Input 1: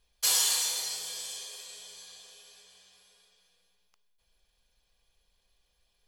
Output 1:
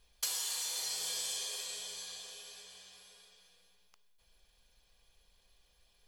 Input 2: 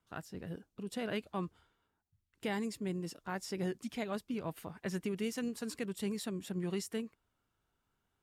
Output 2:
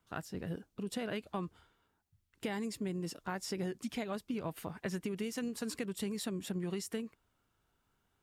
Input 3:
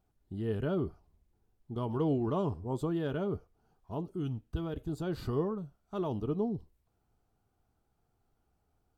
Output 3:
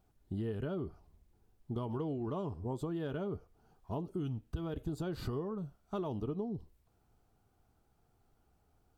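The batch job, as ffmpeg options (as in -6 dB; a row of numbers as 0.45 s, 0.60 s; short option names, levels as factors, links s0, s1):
-af "acompressor=threshold=0.0141:ratio=20,volume=1.58"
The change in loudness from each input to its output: -9.0 LU, 0.0 LU, -4.5 LU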